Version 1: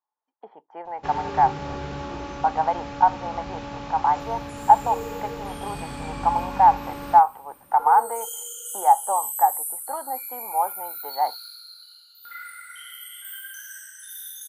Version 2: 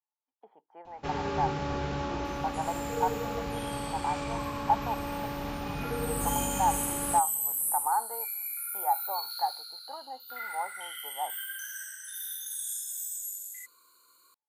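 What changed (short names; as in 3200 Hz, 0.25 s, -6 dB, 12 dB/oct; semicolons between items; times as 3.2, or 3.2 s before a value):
speech -11.5 dB; second sound: entry -1.95 s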